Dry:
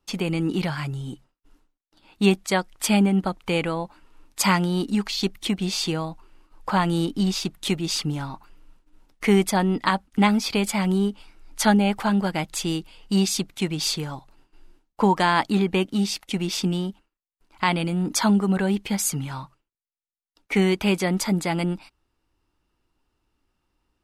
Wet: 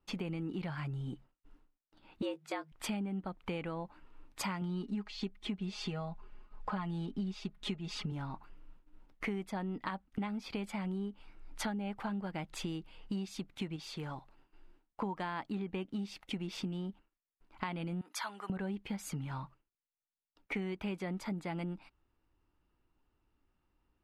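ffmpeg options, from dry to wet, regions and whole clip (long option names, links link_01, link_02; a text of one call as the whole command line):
ffmpeg -i in.wav -filter_complex "[0:a]asettb=1/sr,asplit=3[link_01][link_02][link_03];[link_01]atrim=end=2.224[link_04];[link_02]atrim=start=2.22:end=2.72,asetpts=PTS-STARTPTS,afade=type=in:duration=0.004:curve=qsin,afade=type=out:start_time=0.496:duration=0.004:curve=qsin,afreqshift=140,asplit=2[link_05][link_06];[link_06]adelay=19,volume=-10dB[link_07];[link_05][link_07]amix=inputs=2:normalize=0,atrim=end_sample=22050[link_08];[link_03]atrim=start=2.716[link_09];[link_04][link_08]acrossfade=duration=0.004:curve1=hsin:curve2=qsin[link_10];[link_10][link_09]acrossfade=duration=0.004:curve1=qsin:curve2=hsin,asettb=1/sr,asplit=3[link_11][link_12][link_13];[link_11]atrim=end=4.614[link_14];[link_12]atrim=start=4.61:end=8.12,asetpts=PTS-STARTPTS,afade=type=in:duration=0.004:curve=qsin,afade=type=out:start_time=3.506:duration=0.004:curve=qsin,lowpass=8500,aecho=1:1:4.8:0.73,atrim=end_sample=154791[link_15];[link_13]atrim=start=8.116[link_16];[link_14][link_15]acrossfade=duration=0.004:curve1=hsin:curve2=qsin[link_17];[link_17][link_16]acrossfade=duration=0.004:curve1=qsin:curve2=hsin,asettb=1/sr,asplit=3[link_18][link_19][link_20];[link_18]atrim=end=13.764[link_21];[link_19]atrim=start=13.76:end=15.02,asetpts=PTS-STARTPTS,afade=type=in:duration=0.004:curve=qsin,afade=type=out:start_time=1.256:duration=0.004:curve=qsin,lowshelf=frequency=320:gain=-5.5,acompressor=threshold=-32dB:ratio=2.5:attack=3.2:release=140:knee=1:detection=peak[link_22];[link_20]atrim=start=15.016[link_23];[link_21][link_22]acrossfade=duration=0.004:curve1=hsin:curve2=qsin[link_24];[link_24][link_23]acrossfade=duration=0.004:curve1=qsin:curve2=hsin,asettb=1/sr,asplit=3[link_25][link_26][link_27];[link_25]atrim=end=18.014[link_28];[link_26]atrim=start=18.01:end=18.5,asetpts=PTS-STARTPTS,afade=type=in:duration=0.004:curve=qsin,afade=type=out:start_time=0.486:duration=0.004:curve=qsin,highpass=1100,equalizer=frequency=11000:width=7.8:gain=12.5[link_29];[link_27]atrim=start=18.496[link_30];[link_28][link_29]acrossfade=duration=0.004:curve1=hsin:curve2=qsin[link_31];[link_31][link_30]acrossfade=duration=0.004:curve1=qsin:curve2=hsin,bass=frequency=250:gain=2,treble=frequency=4000:gain=-13,acompressor=threshold=-31dB:ratio=6,volume=-5dB" out.wav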